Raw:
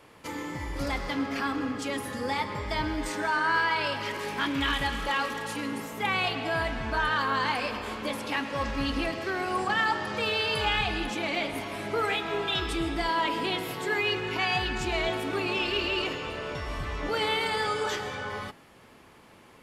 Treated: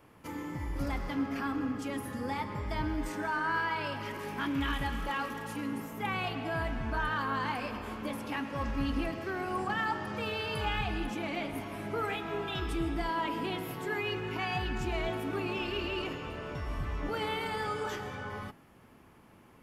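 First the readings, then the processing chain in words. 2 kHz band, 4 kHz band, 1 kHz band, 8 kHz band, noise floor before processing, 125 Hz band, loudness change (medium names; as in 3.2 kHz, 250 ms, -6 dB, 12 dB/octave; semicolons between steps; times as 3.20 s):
-7.5 dB, -10.0 dB, -5.5 dB, -8.5 dB, -54 dBFS, 0.0 dB, -5.5 dB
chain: graphic EQ 500/1000/2000/4000/8000 Hz -6/-3/-5/-10/-8 dB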